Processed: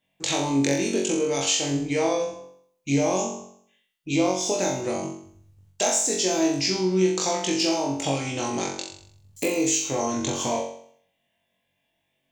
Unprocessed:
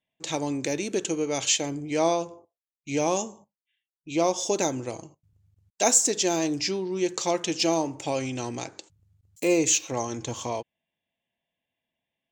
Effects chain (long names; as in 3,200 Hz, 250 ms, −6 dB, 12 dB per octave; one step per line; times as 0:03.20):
downward compressor 5 to 1, threshold −32 dBFS, peak gain reduction 15.5 dB
flutter between parallel walls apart 3.7 metres, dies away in 0.6 s
level +7 dB